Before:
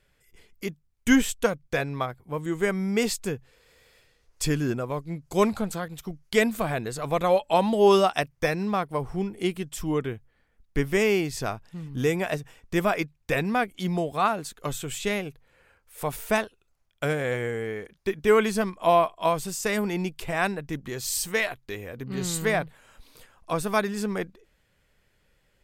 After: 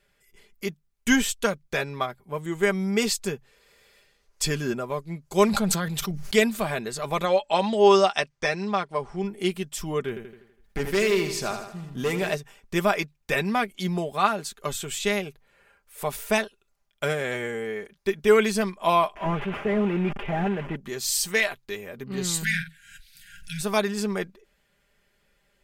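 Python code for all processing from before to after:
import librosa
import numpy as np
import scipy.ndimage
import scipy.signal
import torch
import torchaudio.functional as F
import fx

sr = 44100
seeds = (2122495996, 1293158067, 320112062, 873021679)

y = fx.chain(x, sr, fx.peak_eq(hz=180.0, db=4.5, octaves=0.41),
    fx.sustainer(db_per_s=20.0), at=(5.48, 6.4))
y = fx.chain(y, sr, fx.lowpass(hz=8000.0, slope=24),
    fx.low_shelf(hz=220.0, db=-6.0), at=(7.25, 9.24))
y = fx.chain(y, sr, fx.clip_hard(threshold_db=-21.0),
    fx.echo_feedback(ms=82, feedback_pct=55, wet_db=-10.0),
    fx.sustainer(db_per_s=74.0), at=(10.08, 12.32))
y = fx.chain(y, sr, fx.delta_mod(bps=16000, step_db=-39.5),
    fx.leveller(passes=1),
    fx.sustainer(db_per_s=77.0), at=(19.15, 20.76))
y = fx.chain(y, sr, fx.brickwall_bandstop(low_hz=200.0, high_hz=1400.0),
    fx.doubler(ms=50.0, db=-9.0),
    fx.pre_swell(db_per_s=69.0), at=(22.43, 23.61))
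y = fx.low_shelf(y, sr, hz=190.0, db=-5.5)
y = y + 0.52 * np.pad(y, (int(5.0 * sr / 1000.0), 0))[:len(y)]
y = fx.dynamic_eq(y, sr, hz=4600.0, q=0.8, threshold_db=-42.0, ratio=4.0, max_db=4)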